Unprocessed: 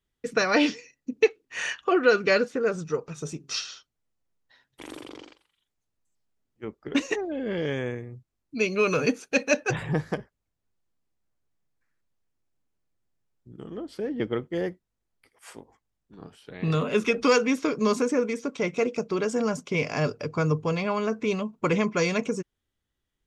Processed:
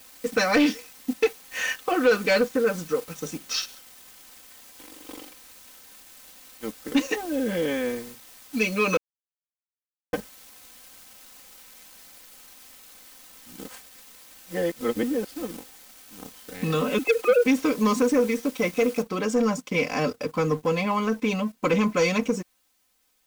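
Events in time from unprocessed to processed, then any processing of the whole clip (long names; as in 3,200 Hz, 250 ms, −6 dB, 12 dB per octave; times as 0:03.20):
0:03.65–0:05.09: downward compressor 2.5 to 1, threshold −48 dBFS
0:08.97–0:10.13: silence
0:13.66–0:15.57: reverse
0:16.98–0:17.46: three sine waves on the formant tracks
0:19.02: noise floor change −47 dB −60 dB
whole clip: comb filter 3.9 ms, depth 96%; leveller curve on the samples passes 2; level −7.5 dB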